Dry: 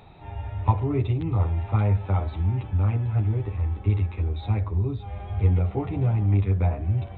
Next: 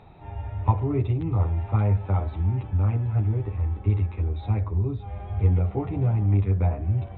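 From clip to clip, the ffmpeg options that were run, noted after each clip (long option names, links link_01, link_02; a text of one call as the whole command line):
ffmpeg -i in.wav -af "lowpass=frequency=2000:poles=1" out.wav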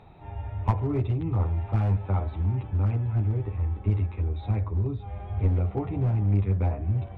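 ffmpeg -i in.wav -af "aeval=exprs='clip(val(0),-1,0.1)':channel_layout=same,volume=-1.5dB" out.wav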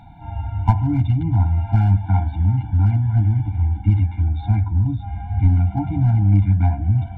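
ffmpeg -i in.wav -af "afftfilt=real='re*eq(mod(floor(b*sr/1024/340),2),0)':imag='im*eq(mod(floor(b*sr/1024/340),2),0)':win_size=1024:overlap=0.75,volume=8.5dB" out.wav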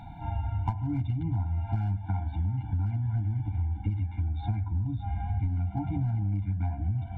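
ffmpeg -i in.wav -af "acompressor=threshold=-27dB:ratio=6" out.wav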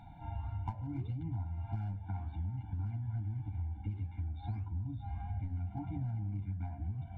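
ffmpeg -i in.wav -af "flanger=delay=9.6:depth=9.9:regen=-82:speed=1.7:shape=sinusoidal,volume=-4.5dB" out.wav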